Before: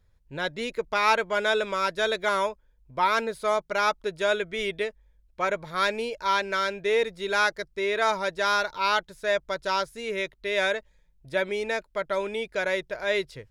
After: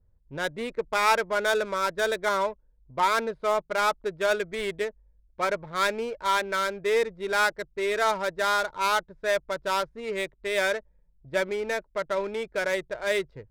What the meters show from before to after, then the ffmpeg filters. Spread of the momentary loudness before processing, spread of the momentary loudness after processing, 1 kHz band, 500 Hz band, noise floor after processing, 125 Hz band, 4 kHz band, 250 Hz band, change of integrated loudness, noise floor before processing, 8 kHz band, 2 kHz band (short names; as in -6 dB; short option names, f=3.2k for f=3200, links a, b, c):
6 LU, 7 LU, 0.0 dB, 0.0 dB, -64 dBFS, -0.5 dB, -2.0 dB, -0.5 dB, -0.5 dB, -64 dBFS, +3.5 dB, -1.0 dB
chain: -af "adynamicsmooth=sensitivity=4.5:basefreq=840,adynamicequalizer=threshold=0.00501:dfrequency=2800:dqfactor=2.7:tfrequency=2800:tqfactor=2.7:attack=5:release=100:ratio=0.375:range=2.5:mode=cutabove:tftype=bell"